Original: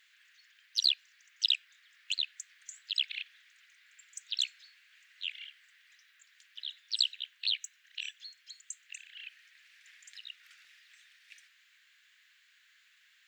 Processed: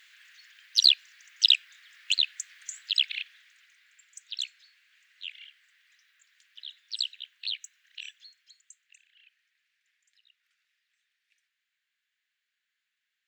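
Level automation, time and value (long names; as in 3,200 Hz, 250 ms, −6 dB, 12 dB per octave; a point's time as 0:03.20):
0:02.77 +8 dB
0:04.08 −2 dB
0:08.10 −2 dB
0:08.84 −11.5 dB
0:09.94 −18 dB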